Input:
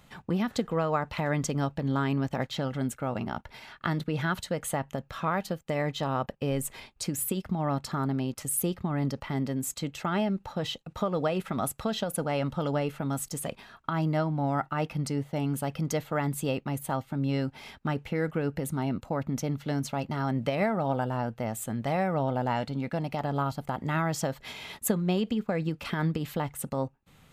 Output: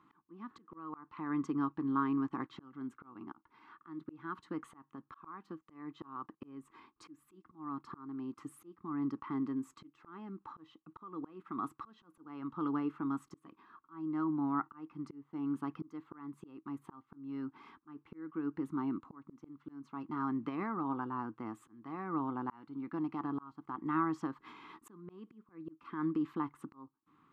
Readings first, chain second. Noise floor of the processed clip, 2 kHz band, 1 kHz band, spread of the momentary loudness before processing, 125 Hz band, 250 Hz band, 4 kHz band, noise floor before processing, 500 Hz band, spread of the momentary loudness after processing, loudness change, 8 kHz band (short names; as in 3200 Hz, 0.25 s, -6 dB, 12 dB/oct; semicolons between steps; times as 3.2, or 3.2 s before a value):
-76 dBFS, -14.5 dB, -9.0 dB, 6 LU, -19.5 dB, -6.5 dB, under -20 dB, -60 dBFS, -17.5 dB, 19 LU, -9.0 dB, under -30 dB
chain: double band-pass 590 Hz, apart 1.8 oct; auto swell 0.484 s; gain +5 dB